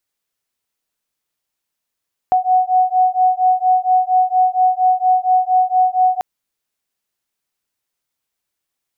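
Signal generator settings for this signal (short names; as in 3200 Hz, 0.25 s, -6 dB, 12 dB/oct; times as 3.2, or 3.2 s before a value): beating tones 738 Hz, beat 4.3 Hz, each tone -14.5 dBFS 3.89 s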